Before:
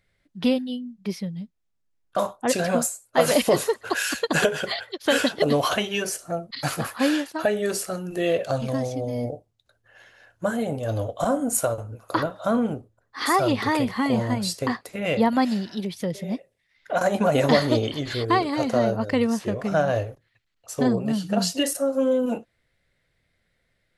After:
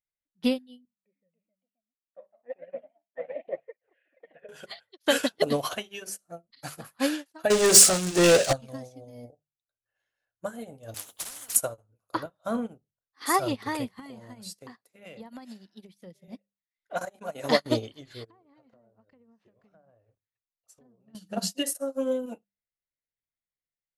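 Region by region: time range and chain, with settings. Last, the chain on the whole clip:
0.85–4.49 vocal tract filter e + echoes that change speed 0.303 s, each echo +2 st, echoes 2, each echo -6 dB
7.5–8.53 switching spikes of -21 dBFS + LPF 8000 Hz 24 dB/oct + sample leveller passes 3
10.94–11.56 RIAA curve recording + compressor 8:1, threshold -21 dBFS + spectral compressor 10:1
13.99–16.28 HPF 110 Hz 24 dB/oct + compressor 8:1, threshold -23 dBFS
17.05–17.66 expander -15 dBFS + low shelf 190 Hz -9.5 dB + backwards sustainer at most 70 dB/s
18.24–21.15 treble ducked by the level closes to 1100 Hz, closed at -17.5 dBFS + compressor 8:1, threshold -31 dBFS
whole clip: high shelf 6600 Hz +9 dB; notches 50/100/150/200 Hz; upward expander 2.5:1, over -37 dBFS; gain +3 dB

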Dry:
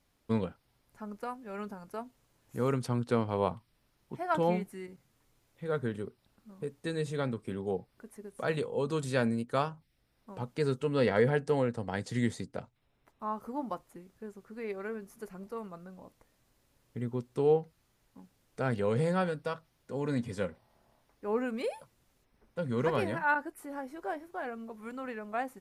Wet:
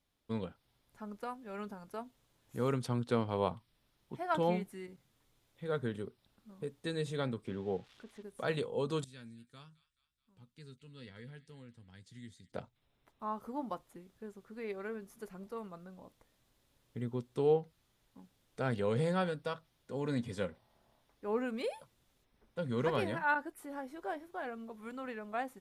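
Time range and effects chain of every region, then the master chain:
7.45–8.23 switching spikes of -38.5 dBFS + LPF 2800 Hz
9.04–12.52 passive tone stack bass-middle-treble 6-0-2 + doubler 12 ms -11 dB + thin delay 0.214 s, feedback 52%, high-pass 1700 Hz, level -16.5 dB
whole clip: bell 3500 Hz +6 dB 0.42 oct; AGC gain up to 6 dB; gain -9 dB

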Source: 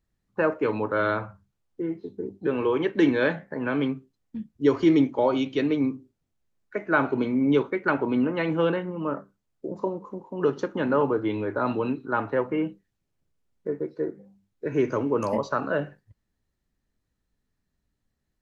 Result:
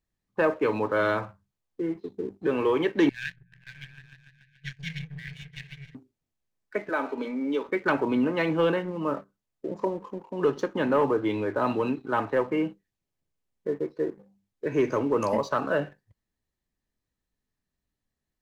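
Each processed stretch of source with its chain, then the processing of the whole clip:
3.09–5.95 power-law curve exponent 2 + brick-wall FIR band-stop 190–1500 Hz + repeats that get brighter 0.145 s, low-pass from 200 Hz, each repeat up 1 oct, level -3 dB
6.89–7.69 HPF 260 Hz 24 dB/oct + notch comb 360 Hz + compressor 1.5:1, threshold -32 dBFS
whole clip: low shelf 350 Hz -4.5 dB; notch 1400 Hz, Q 12; sample leveller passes 1; gain -1.5 dB

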